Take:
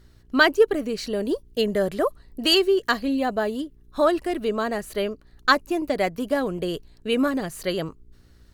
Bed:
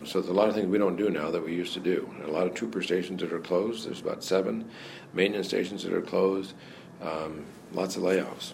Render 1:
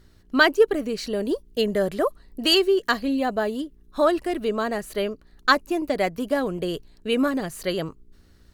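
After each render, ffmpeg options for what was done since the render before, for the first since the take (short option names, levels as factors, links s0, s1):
-af "bandreject=f=60:t=h:w=4,bandreject=f=120:t=h:w=4"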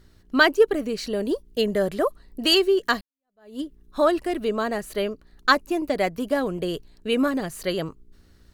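-filter_complex "[0:a]asplit=2[s0][s1];[s0]atrim=end=3.01,asetpts=PTS-STARTPTS,afade=t=out:st=3.006:d=0.004:c=hsin[s2];[s1]atrim=start=3.01,asetpts=PTS-STARTPTS,afade=t=in:d=0.59:c=exp[s3];[s2][s3]concat=n=2:v=0:a=1"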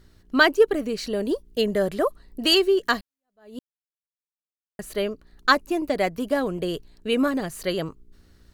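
-filter_complex "[0:a]asplit=3[s0][s1][s2];[s0]atrim=end=3.59,asetpts=PTS-STARTPTS,afade=t=out:st=3.586:d=0.004:c=hsin[s3];[s1]atrim=start=3.59:end=4.79,asetpts=PTS-STARTPTS,volume=0[s4];[s2]atrim=start=4.79,asetpts=PTS-STARTPTS,afade=t=in:d=0.004:c=hsin[s5];[s3][s4][s5]concat=n=3:v=0:a=1"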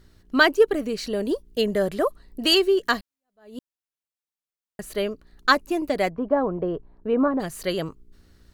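-filter_complex "[0:a]asplit=3[s0][s1][s2];[s0]afade=t=out:st=6.1:d=0.02[s3];[s1]lowpass=f=1000:t=q:w=1.8,afade=t=in:st=6.1:d=0.02,afade=t=out:st=7.39:d=0.02[s4];[s2]afade=t=in:st=7.39:d=0.02[s5];[s3][s4][s5]amix=inputs=3:normalize=0"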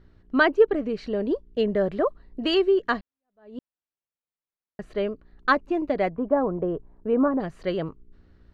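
-af "lowpass=3500,highshelf=f=2300:g=-9"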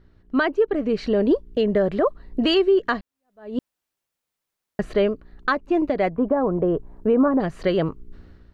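-af "dynaudnorm=f=120:g=7:m=3.98,alimiter=limit=0.282:level=0:latency=1:release=320"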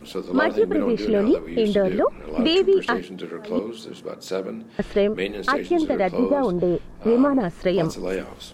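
-filter_complex "[1:a]volume=0.841[s0];[0:a][s0]amix=inputs=2:normalize=0"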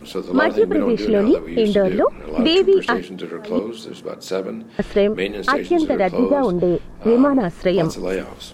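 -af "volume=1.5"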